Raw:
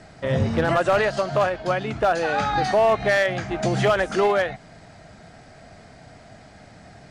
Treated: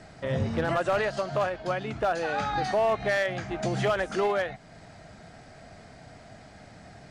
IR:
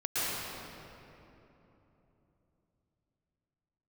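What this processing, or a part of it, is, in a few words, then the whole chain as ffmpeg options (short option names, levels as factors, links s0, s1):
parallel compression: -filter_complex "[0:a]asplit=2[s0][s1];[s1]acompressor=threshold=0.0126:ratio=6,volume=0.708[s2];[s0][s2]amix=inputs=2:normalize=0,volume=0.447"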